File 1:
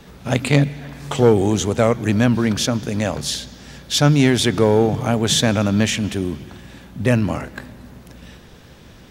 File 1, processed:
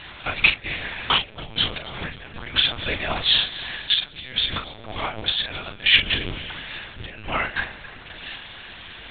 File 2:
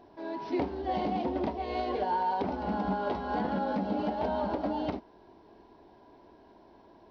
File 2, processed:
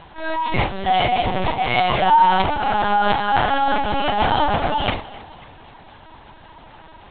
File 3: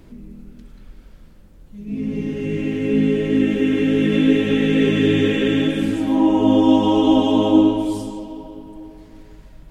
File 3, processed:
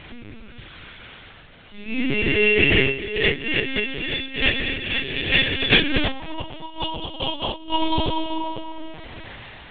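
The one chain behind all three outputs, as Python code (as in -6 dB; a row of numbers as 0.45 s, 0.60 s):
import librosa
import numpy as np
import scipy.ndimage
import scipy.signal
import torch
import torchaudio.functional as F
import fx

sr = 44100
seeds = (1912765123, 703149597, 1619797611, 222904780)

y = fx.over_compress(x, sr, threshold_db=-23.0, ratio=-0.5)
y = fx.bandpass_q(y, sr, hz=3000.0, q=0.91)
y = fx.doubler(y, sr, ms=41.0, db=-7.5)
y = fx.echo_feedback(y, sr, ms=268, feedback_pct=47, wet_db=-18.5)
y = fx.lpc_vocoder(y, sr, seeds[0], excitation='pitch_kept', order=10)
y = y * 10.0 ** (-1.5 / 20.0) / np.max(np.abs(y))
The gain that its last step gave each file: +8.0 dB, +24.5 dB, +15.5 dB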